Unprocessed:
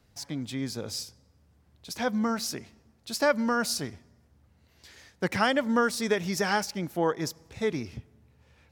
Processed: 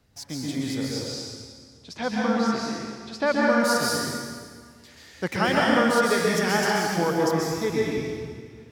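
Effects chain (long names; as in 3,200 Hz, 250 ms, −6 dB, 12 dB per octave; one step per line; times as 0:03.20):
0:00.88–0:03.48: low-pass filter 6,500 Hz → 3,300 Hz 12 dB per octave
dense smooth reverb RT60 1.8 s, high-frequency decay 0.9×, pre-delay 115 ms, DRR −4 dB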